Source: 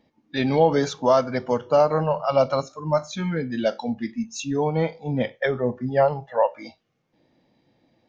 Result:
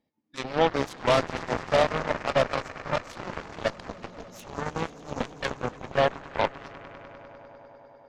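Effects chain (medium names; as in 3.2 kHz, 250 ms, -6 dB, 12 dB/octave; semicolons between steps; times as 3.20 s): echo with a slow build-up 100 ms, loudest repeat 5, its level -13 dB; Chebyshev shaper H 3 -13 dB, 5 -10 dB, 6 -22 dB, 7 -10 dB, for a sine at -5 dBFS; trim -4 dB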